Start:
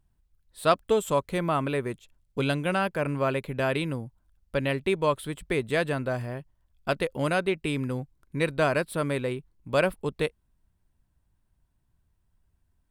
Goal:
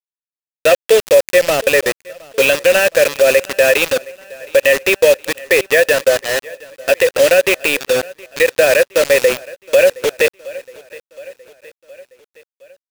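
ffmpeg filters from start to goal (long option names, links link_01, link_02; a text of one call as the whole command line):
ffmpeg -i in.wav -filter_complex "[0:a]aemphasis=mode=production:type=75fm,asplit=2[link_01][link_02];[link_02]highpass=frequency=720:poles=1,volume=16dB,asoftclip=type=tanh:threshold=-6dB[link_03];[link_01][link_03]amix=inputs=2:normalize=0,lowpass=frequency=7900:poles=1,volume=-6dB,asplit=3[link_04][link_05][link_06];[link_04]bandpass=frequency=530:width_type=q:width=8,volume=0dB[link_07];[link_05]bandpass=frequency=1840:width_type=q:width=8,volume=-6dB[link_08];[link_06]bandpass=frequency=2480:width_type=q:width=8,volume=-9dB[link_09];[link_07][link_08][link_09]amix=inputs=3:normalize=0,acrusher=bits=5:mix=0:aa=0.000001,asplit=2[link_10][link_11];[link_11]aecho=0:1:717|1434|2151|2868:0.0631|0.0353|0.0198|0.0111[link_12];[link_10][link_12]amix=inputs=2:normalize=0,alimiter=level_in=20dB:limit=-1dB:release=50:level=0:latency=1,volume=-1dB" out.wav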